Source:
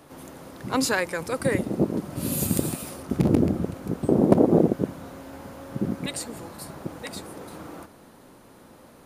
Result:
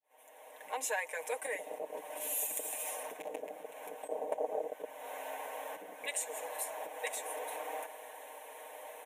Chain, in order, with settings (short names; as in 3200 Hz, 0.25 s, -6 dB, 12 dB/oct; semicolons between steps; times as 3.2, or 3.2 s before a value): opening faded in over 1.99 s; fixed phaser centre 1300 Hz, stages 6; dynamic EQ 6600 Hz, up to +6 dB, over -56 dBFS, Q 2.1; compressor 3:1, threshold -43 dBFS, peak gain reduction 20 dB; steep high-pass 370 Hz 36 dB/oct; comb 6.5 ms, depth 73%; attack slew limiter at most 360 dB/s; gain +6 dB